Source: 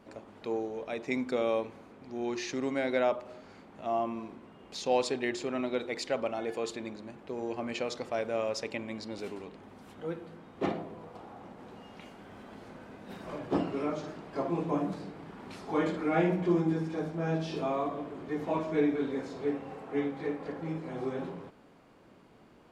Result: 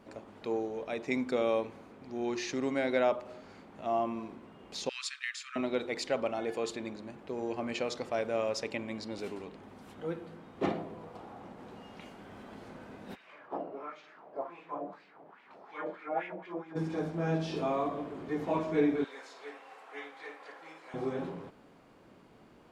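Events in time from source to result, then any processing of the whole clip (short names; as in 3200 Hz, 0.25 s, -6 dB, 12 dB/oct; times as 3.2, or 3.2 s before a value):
4.89–5.56 steep high-pass 1200 Hz 72 dB/oct
13.14–16.75 LFO band-pass sine 1 Hz -> 5.5 Hz 570–2500 Hz
19.04–20.94 HPF 1000 Hz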